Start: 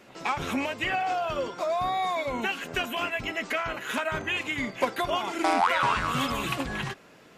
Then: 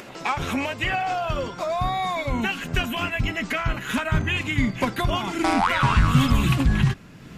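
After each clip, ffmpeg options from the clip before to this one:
ffmpeg -i in.wav -af "asubboost=boost=9:cutoff=170,acompressor=mode=upward:threshold=-37dB:ratio=2.5,volume=3.5dB" out.wav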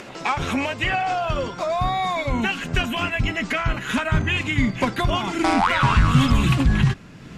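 ffmpeg -i in.wav -filter_complex "[0:a]lowpass=9700,asplit=2[link_01][link_02];[link_02]asoftclip=type=tanh:threshold=-15.5dB,volume=-10dB[link_03];[link_01][link_03]amix=inputs=2:normalize=0" out.wav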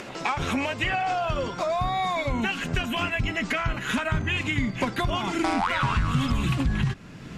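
ffmpeg -i in.wav -af "acompressor=threshold=-24dB:ratio=2.5" out.wav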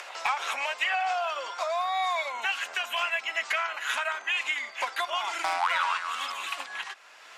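ffmpeg -i in.wav -af "highpass=frequency=700:width=0.5412,highpass=frequency=700:width=1.3066,asoftclip=type=hard:threshold=-16.5dB" out.wav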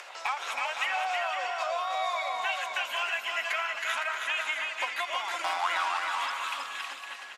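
ffmpeg -i in.wav -filter_complex "[0:a]equalizer=frequency=130:width_type=o:width=0.37:gain=-15,asplit=2[link_01][link_02];[link_02]aecho=0:1:320|512|627.2|696.3|737.8:0.631|0.398|0.251|0.158|0.1[link_03];[link_01][link_03]amix=inputs=2:normalize=0,volume=-3.5dB" out.wav

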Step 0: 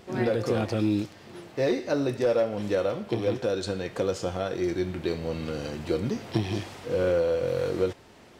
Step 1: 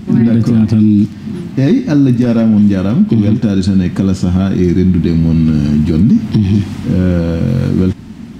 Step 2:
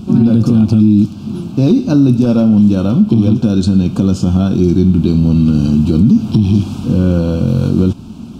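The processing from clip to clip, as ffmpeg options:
ffmpeg -i in.wav -filter_complex "[0:a]lowshelf=frequency=330:width_type=q:width=3:gain=13,asplit=2[link_01][link_02];[link_02]acompressor=threshold=-19dB:ratio=6,volume=0dB[link_03];[link_01][link_03]amix=inputs=2:normalize=0,alimiter=limit=-6.5dB:level=0:latency=1:release=45,volume=4.5dB" out.wav
ffmpeg -i in.wav -af "asuperstop=centerf=1900:order=4:qfactor=1.7" out.wav

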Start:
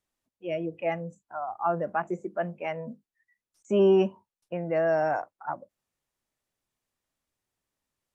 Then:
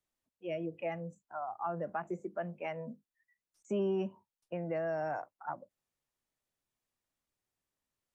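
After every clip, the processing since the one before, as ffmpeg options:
ffmpeg -i in.wav -filter_complex "[0:a]acrossover=split=170[link_01][link_02];[link_02]acompressor=threshold=-28dB:ratio=4[link_03];[link_01][link_03]amix=inputs=2:normalize=0,volume=-5dB" out.wav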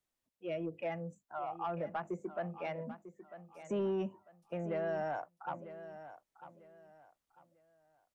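ffmpeg -i in.wav -af "asoftclip=type=tanh:threshold=-27.5dB,aecho=1:1:947|1894|2841:0.224|0.0627|0.0176" out.wav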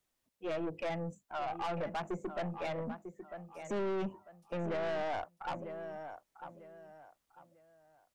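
ffmpeg -i in.wav -af "aeval=exprs='(tanh(89.1*val(0)+0.35)-tanh(0.35))/89.1':channel_layout=same,volume=6.5dB" out.wav

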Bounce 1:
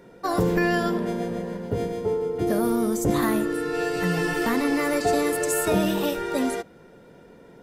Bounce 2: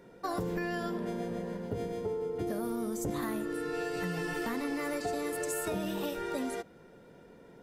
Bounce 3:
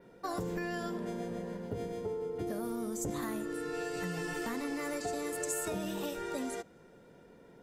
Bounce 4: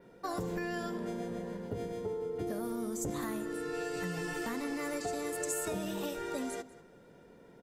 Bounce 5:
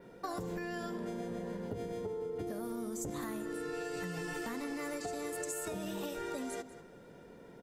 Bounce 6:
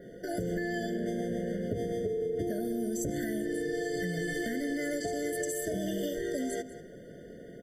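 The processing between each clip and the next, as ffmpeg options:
ffmpeg -i in.wav -af "acompressor=threshold=-26dB:ratio=4,volume=-5.5dB" out.wav
ffmpeg -i in.wav -af "adynamicequalizer=threshold=0.001:dfrequency=7200:dqfactor=1.9:tfrequency=7200:tqfactor=1.9:attack=5:release=100:ratio=0.375:range=3.5:mode=boostabove:tftype=bell,volume=-2.5dB" out.wav
ffmpeg -i in.wav -filter_complex "[0:a]asplit=2[link_01][link_02];[link_02]adelay=192.4,volume=-17dB,highshelf=frequency=4000:gain=-4.33[link_03];[link_01][link_03]amix=inputs=2:normalize=0" out.wav
ffmpeg -i in.wav -af "acompressor=threshold=-39dB:ratio=6,volume=3dB" out.wav
ffmpeg -i in.wav -af "afftfilt=real='re*eq(mod(floor(b*sr/1024/720),2),0)':imag='im*eq(mod(floor(b*sr/1024/720),2),0)':win_size=1024:overlap=0.75,volume=7dB" out.wav

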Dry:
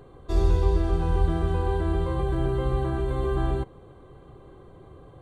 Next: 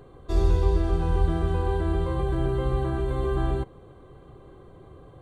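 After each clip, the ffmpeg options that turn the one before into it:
ffmpeg -i in.wav -af "bandreject=frequency=880:width=12" out.wav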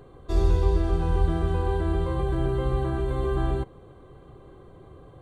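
ffmpeg -i in.wav -af anull out.wav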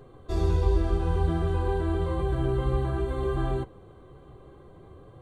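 ffmpeg -i in.wav -af "flanger=delay=7.4:depth=9.1:regen=-38:speed=0.57:shape=triangular,volume=2.5dB" out.wav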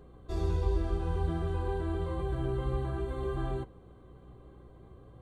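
ffmpeg -i in.wav -af "aeval=exprs='val(0)+0.00398*(sin(2*PI*60*n/s)+sin(2*PI*2*60*n/s)/2+sin(2*PI*3*60*n/s)/3+sin(2*PI*4*60*n/s)/4+sin(2*PI*5*60*n/s)/5)':channel_layout=same,volume=-6dB" out.wav

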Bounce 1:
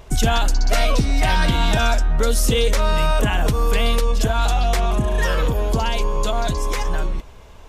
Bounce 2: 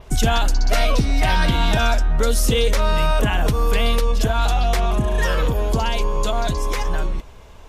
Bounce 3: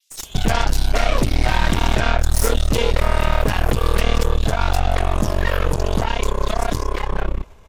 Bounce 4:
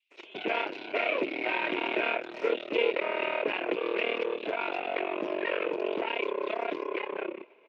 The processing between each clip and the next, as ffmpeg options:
ffmpeg -i in.wav -af "adynamicequalizer=threshold=0.00631:dfrequency=7700:dqfactor=1.9:tfrequency=7700:tqfactor=1.9:attack=5:release=100:ratio=0.375:range=2:mode=cutabove:tftype=bell" out.wav
ffmpeg -i in.wav -filter_complex "[0:a]acrossover=split=3800[link_01][link_02];[link_01]adelay=230[link_03];[link_03][link_02]amix=inputs=2:normalize=0,aeval=exprs='0.501*(cos(1*acos(clip(val(0)/0.501,-1,1)))-cos(1*PI/2))+0.0562*(cos(3*acos(clip(val(0)/0.501,-1,1)))-cos(3*PI/2))+0.0891*(cos(6*acos(clip(val(0)/0.501,-1,1)))-cos(6*PI/2))':channel_layout=same" out.wav
ffmpeg -i in.wav -af "highpass=frequency=350:width=0.5412,highpass=frequency=350:width=1.3066,equalizer=frequency=350:width_type=q:width=4:gain=7,equalizer=frequency=790:width_type=q:width=4:gain=-8,equalizer=frequency=1200:width_type=q:width=4:gain=-9,equalizer=frequency=1700:width_type=q:width=4:gain=-7,equalizer=frequency=2500:width_type=q:width=4:gain=9,lowpass=frequency=2600:width=0.5412,lowpass=frequency=2600:width=1.3066,volume=-4.5dB" out.wav

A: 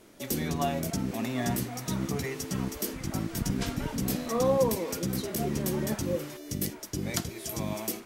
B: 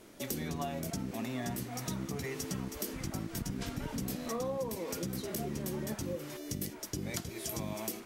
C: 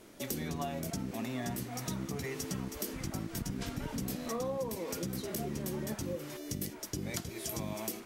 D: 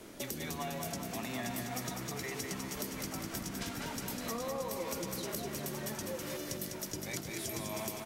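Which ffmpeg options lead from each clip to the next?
ffmpeg -i in.wav -af "acompressor=threshold=-34dB:ratio=5" out.wav
ffmpeg -i in.wav -af anull out.wav
ffmpeg -i in.wav -filter_complex "[0:a]acrossover=split=150|670[link_01][link_02][link_03];[link_01]acompressor=threshold=-57dB:ratio=4[link_04];[link_02]acompressor=threshold=-49dB:ratio=4[link_05];[link_03]acompressor=threshold=-44dB:ratio=4[link_06];[link_04][link_05][link_06]amix=inputs=3:normalize=0,aecho=1:1:201|402|603|804|1005|1206|1407:0.562|0.309|0.17|0.0936|0.0515|0.0283|0.0156,volume=4.5dB" out.wav

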